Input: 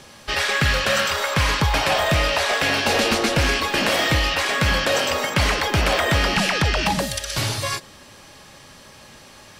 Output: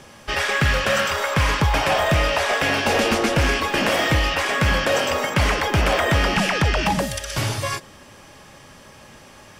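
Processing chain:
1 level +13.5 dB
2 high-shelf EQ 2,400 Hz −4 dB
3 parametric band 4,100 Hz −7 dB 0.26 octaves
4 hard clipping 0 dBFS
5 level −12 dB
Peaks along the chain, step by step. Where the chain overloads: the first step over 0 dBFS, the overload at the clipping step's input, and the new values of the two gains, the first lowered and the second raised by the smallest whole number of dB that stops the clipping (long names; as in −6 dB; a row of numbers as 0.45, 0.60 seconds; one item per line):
+4.0, +3.0, +3.0, 0.0, −12.0 dBFS
step 1, 3.0 dB
step 1 +10.5 dB, step 5 −9 dB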